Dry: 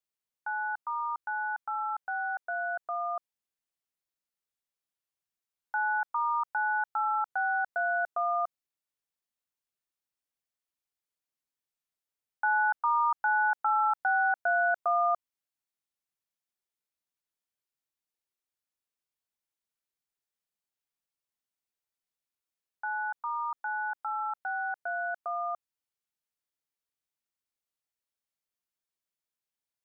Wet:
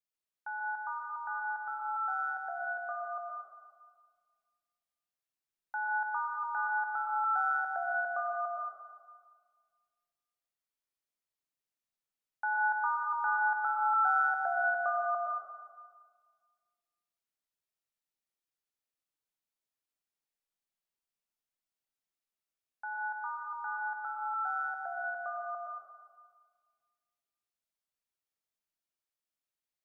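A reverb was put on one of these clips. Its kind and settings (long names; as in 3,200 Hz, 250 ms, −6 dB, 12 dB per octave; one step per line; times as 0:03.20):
comb and all-pass reverb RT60 1.7 s, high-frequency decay 0.85×, pre-delay 75 ms, DRR −1.5 dB
level −6 dB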